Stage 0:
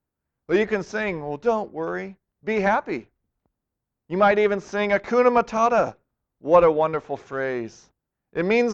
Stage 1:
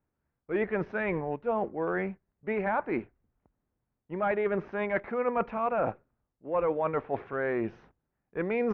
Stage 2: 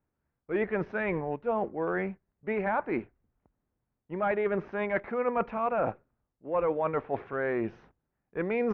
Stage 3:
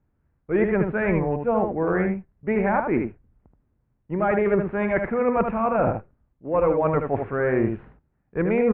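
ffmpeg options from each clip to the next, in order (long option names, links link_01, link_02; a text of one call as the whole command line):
ffmpeg -i in.wav -af "lowpass=frequency=2500:width=0.5412,lowpass=frequency=2500:width=1.3066,areverse,acompressor=threshold=-29dB:ratio=5,areverse,volume=2dB" out.wav
ffmpeg -i in.wav -af anull out.wav
ffmpeg -i in.wav -af "lowpass=frequency=2700:width=0.5412,lowpass=frequency=2700:width=1.3066,lowshelf=frequency=210:gain=11.5,aecho=1:1:77:0.501,volume=4.5dB" out.wav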